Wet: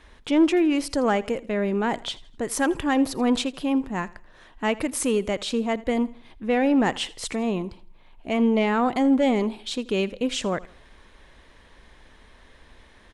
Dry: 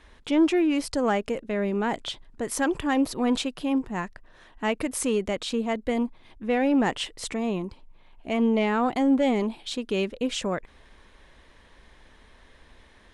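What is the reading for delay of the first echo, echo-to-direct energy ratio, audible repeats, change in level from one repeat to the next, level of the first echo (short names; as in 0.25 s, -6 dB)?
82 ms, -20.0 dB, 2, -8.5 dB, -20.5 dB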